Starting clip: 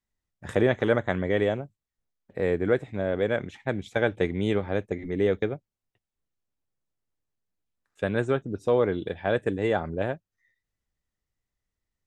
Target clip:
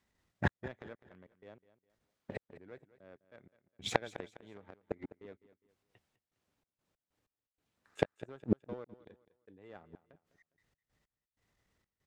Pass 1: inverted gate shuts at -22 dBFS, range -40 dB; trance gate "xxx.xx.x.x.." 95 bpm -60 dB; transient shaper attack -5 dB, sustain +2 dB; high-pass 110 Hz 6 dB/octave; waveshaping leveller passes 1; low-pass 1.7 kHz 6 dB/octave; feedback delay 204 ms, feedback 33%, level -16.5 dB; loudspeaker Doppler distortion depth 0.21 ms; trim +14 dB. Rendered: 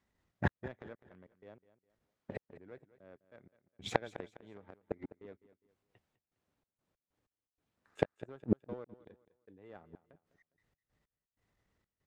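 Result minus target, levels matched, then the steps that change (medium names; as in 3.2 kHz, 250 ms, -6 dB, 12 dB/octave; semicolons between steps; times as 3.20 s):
4 kHz band -3.5 dB
change: low-pass 3.6 kHz 6 dB/octave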